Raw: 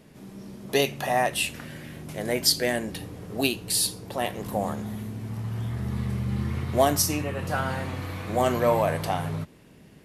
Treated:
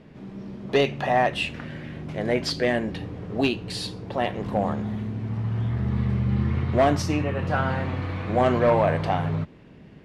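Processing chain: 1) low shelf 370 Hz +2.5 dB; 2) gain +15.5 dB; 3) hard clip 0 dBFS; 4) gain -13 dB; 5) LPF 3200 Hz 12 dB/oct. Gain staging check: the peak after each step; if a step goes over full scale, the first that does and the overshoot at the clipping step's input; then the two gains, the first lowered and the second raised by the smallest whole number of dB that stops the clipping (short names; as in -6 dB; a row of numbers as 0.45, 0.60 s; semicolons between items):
-6.5, +9.0, 0.0, -13.0, -12.5 dBFS; step 2, 9.0 dB; step 2 +6.5 dB, step 4 -4 dB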